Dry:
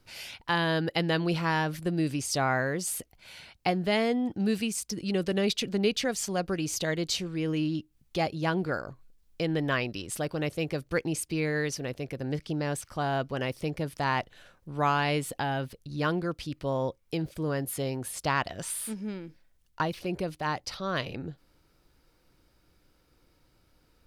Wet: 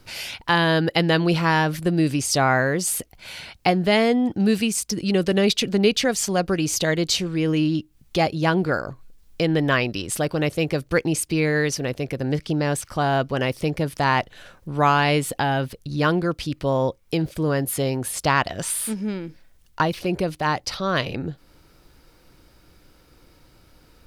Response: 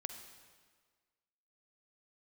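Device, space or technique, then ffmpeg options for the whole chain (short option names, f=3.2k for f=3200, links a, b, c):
parallel compression: -filter_complex "[0:a]asplit=2[a][b];[b]acompressor=threshold=-47dB:ratio=6,volume=-4dB[c];[a][c]amix=inputs=2:normalize=0,volume=7.5dB"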